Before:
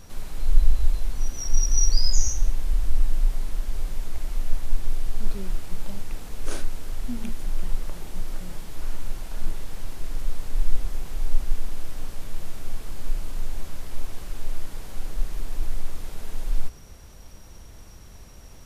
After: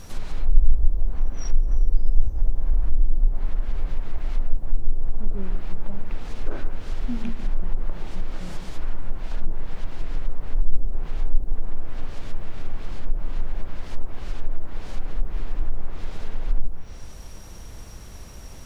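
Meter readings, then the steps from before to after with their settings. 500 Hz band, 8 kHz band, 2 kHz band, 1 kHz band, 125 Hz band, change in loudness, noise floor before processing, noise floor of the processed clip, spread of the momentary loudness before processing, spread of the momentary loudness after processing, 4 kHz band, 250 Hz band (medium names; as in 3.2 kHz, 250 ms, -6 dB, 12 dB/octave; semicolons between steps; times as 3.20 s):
+2.5 dB, no reading, 0.0 dB, +1.5 dB, +2.0 dB, +0.5 dB, -44 dBFS, -38 dBFS, 15 LU, 12 LU, -10.0 dB, +3.0 dB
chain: echo whose repeats swap between lows and highs 145 ms, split 2.4 kHz, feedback 50%, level -11 dB; in parallel at -2.5 dB: compression 6:1, threshold -27 dBFS, peak gain reduction 20 dB; on the sum: low-pass that closes with the level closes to 520 Hz, closed at -10 dBFS; word length cut 12-bit, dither triangular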